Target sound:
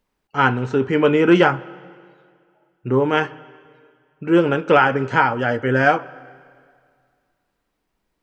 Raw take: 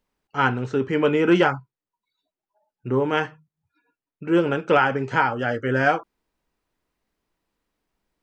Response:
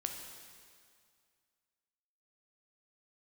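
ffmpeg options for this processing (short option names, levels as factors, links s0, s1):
-filter_complex "[0:a]asplit=2[s0][s1];[1:a]atrim=start_sample=2205,lowpass=4400[s2];[s1][s2]afir=irnorm=-1:irlink=0,volume=0.224[s3];[s0][s3]amix=inputs=2:normalize=0,volume=1.33"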